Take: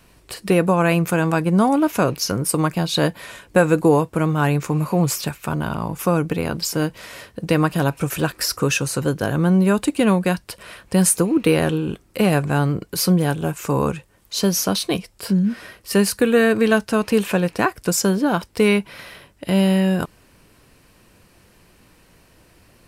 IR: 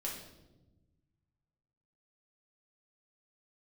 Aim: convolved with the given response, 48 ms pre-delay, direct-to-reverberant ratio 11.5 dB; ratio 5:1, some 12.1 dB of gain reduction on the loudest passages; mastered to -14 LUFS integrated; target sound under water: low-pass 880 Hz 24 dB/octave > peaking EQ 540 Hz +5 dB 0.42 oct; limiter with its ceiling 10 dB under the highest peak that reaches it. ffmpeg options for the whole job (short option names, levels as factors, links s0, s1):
-filter_complex "[0:a]acompressor=threshold=0.0562:ratio=5,alimiter=limit=0.0944:level=0:latency=1,asplit=2[s0][s1];[1:a]atrim=start_sample=2205,adelay=48[s2];[s1][s2]afir=irnorm=-1:irlink=0,volume=0.237[s3];[s0][s3]amix=inputs=2:normalize=0,lowpass=f=880:w=0.5412,lowpass=f=880:w=1.3066,equalizer=f=540:t=o:w=0.42:g=5,volume=7.5"